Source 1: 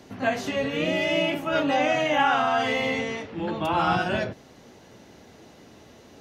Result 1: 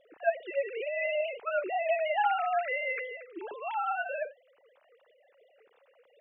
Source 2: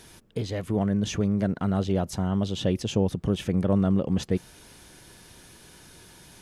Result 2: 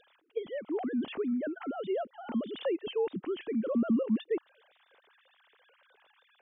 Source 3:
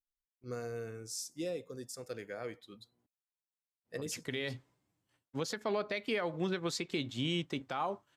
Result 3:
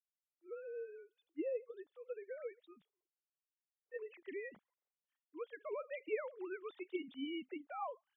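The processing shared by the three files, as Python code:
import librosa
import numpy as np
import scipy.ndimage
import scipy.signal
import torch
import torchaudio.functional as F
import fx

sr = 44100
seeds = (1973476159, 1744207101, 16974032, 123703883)

y = fx.sine_speech(x, sr)
y = y * librosa.db_to_amplitude(-7.0)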